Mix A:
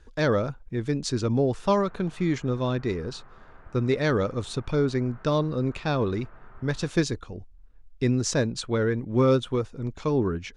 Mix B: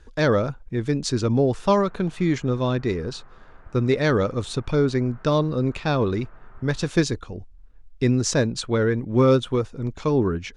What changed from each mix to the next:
speech +3.5 dB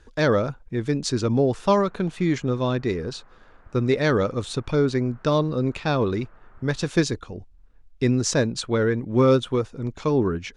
background: send -11.0 dB; master: add low shelf 79 Hz -5.5 dB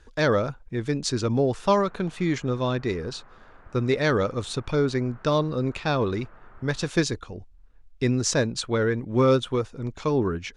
speech: add bell 230 Hz -3 dB 2.5 oct; background +3.5 dB

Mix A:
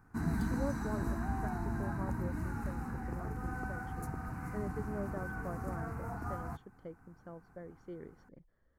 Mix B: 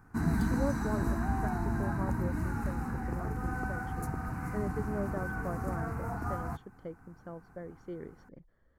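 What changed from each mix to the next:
speech +4.5 dB; background +4.5 dB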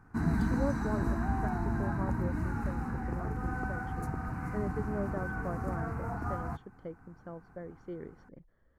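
master: add high shelf 7100 Hz -11 dB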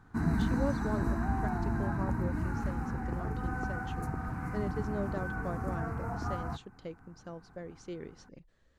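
speech: remove polynomial smoothing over 41 samples

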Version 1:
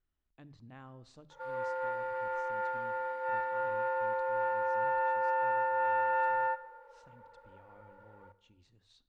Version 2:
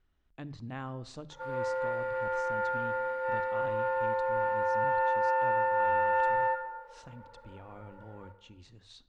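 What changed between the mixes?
speech +11.5 dB; background: send +11.0 dB

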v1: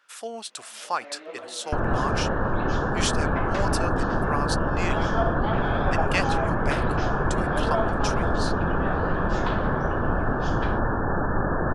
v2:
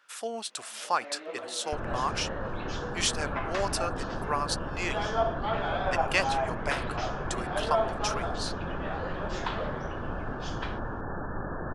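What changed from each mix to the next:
second sound -10.5 dB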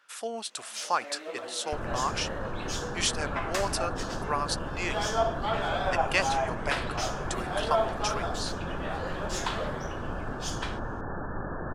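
first sound: remove air absorption 180 m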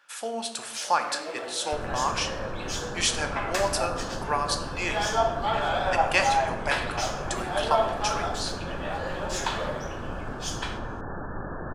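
reverb: on, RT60 0.95 s

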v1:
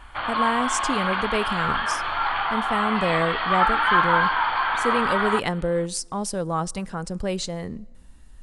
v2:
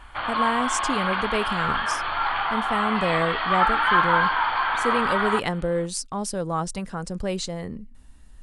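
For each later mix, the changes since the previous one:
reverb: off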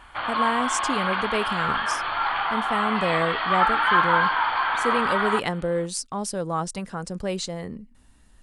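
master: add low shelf 67 Hz -10.5 dB

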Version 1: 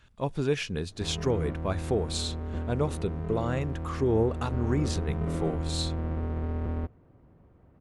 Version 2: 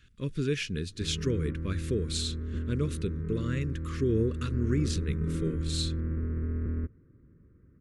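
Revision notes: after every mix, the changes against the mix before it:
background: add LPF 1900 Hz 24 dB/oct; master: add Butterworth band-stop 770 Hz, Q 0.73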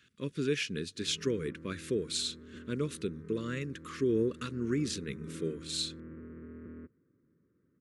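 background -7.5 dB; master: add HPF 200 Hz 12 dB/oct

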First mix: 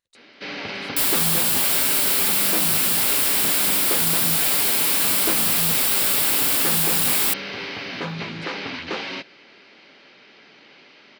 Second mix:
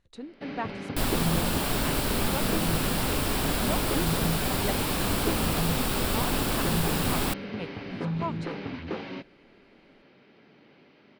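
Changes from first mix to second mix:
speech +12.0 dB; first sound -8.0 dB; master: add tilt -4 dB/oct

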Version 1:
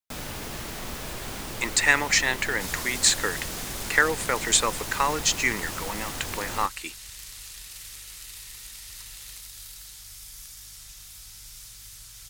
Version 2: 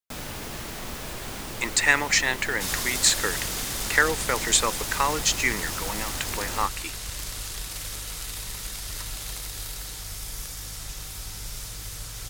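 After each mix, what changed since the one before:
second sound: remove passive tone stack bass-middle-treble 5-5-5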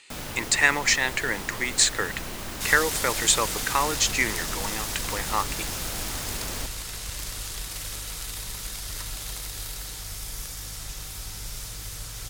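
speech: entry -1.25 s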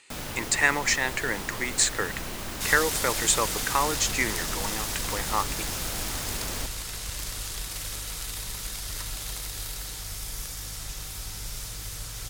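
speech: add bell 3600 Hz -5.5 dB 1.6 oct

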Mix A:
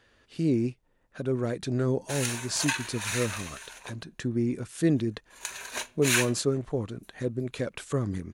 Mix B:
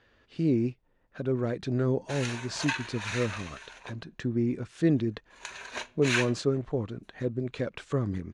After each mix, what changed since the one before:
master: add air absorption 120 m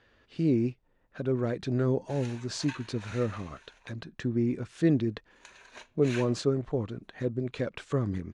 background -11.5 dB

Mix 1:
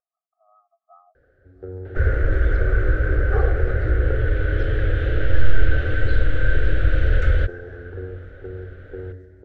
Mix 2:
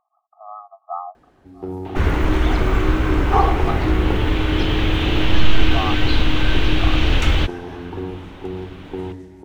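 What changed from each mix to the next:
speech +10.5 dB; master: remove EQ curve 110 Hz 0 dB, 180 Hz -16 dB, 310 Hz -13 dB, 520 Hz +4 dB, 980 Hz -29 dB, 1500 Hz +4 dB, 2500 Hz -19 dB, 4100 Hz -18 dB, 7800 Hz -23 dB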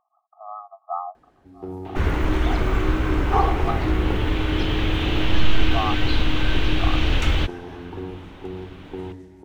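first sound -4.5 dB; second sound -3.5 dB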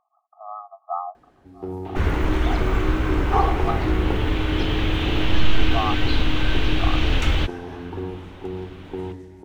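reverb: on, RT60 0.45 s

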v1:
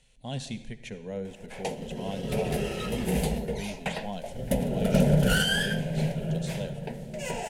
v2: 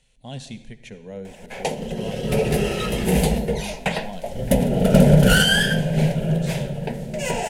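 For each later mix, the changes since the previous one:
background +8.5 dB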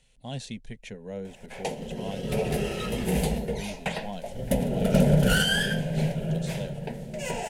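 background -7.0 dB; reverb: off

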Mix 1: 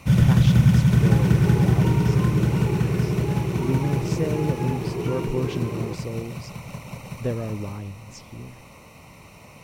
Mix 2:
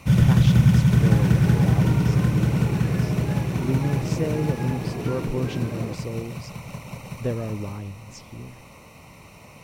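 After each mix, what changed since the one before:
second sound: remove ripple EQ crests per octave 0.72, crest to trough 13 dB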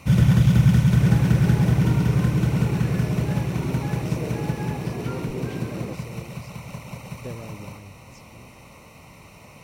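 speech -9.5 dB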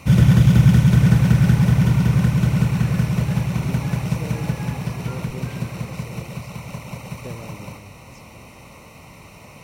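first sound +3.5 dB; second sound: add bell 310 Hz -9.5 dB 2.1 oct

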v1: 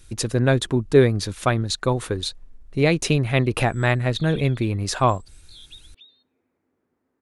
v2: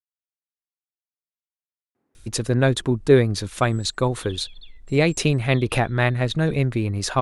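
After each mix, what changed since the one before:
speech: entry +2.15 s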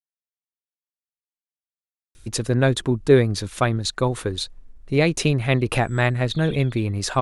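background: entry +2.15 s

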